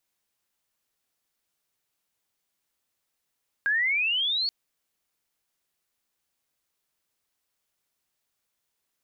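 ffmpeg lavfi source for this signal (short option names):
-f lavfi -i "aevalsrc='pow(10,(-21-3*t/0.83)/20)*sin(2*PI*1600*0.83/log(4500/1600)*(exp(log(4500/1600)*t/0.83)-1))':d=0.83:s=44100"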